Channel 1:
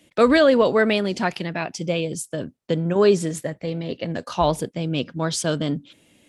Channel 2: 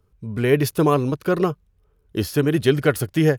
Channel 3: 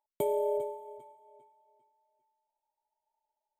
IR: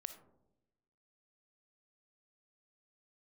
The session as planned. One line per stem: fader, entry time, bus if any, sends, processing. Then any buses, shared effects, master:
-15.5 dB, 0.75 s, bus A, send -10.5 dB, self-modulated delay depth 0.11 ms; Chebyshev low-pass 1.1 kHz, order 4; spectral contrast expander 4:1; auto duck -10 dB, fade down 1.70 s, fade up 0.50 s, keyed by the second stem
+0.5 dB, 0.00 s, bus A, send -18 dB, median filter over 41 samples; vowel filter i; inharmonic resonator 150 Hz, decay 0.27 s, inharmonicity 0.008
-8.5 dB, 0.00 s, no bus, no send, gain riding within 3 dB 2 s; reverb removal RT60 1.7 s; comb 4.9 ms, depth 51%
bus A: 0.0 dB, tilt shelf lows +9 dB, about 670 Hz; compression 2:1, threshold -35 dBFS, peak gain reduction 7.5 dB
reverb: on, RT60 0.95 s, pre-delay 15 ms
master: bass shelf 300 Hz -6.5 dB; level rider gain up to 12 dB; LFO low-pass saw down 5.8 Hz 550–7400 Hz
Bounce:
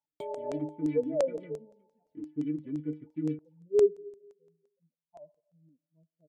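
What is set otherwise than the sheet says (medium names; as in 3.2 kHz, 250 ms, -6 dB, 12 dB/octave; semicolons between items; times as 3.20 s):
stem 2 +0.5 dB -> -10.0 dB; stem 3: missing comb 4.9 ms, depth 51%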